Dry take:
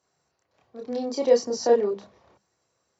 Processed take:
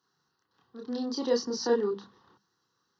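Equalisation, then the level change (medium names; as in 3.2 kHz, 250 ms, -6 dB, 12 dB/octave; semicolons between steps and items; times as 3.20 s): high-pass 150 Hz 12 dB/octave; static phaser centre 2.3 kHz, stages 6; +2.0 dB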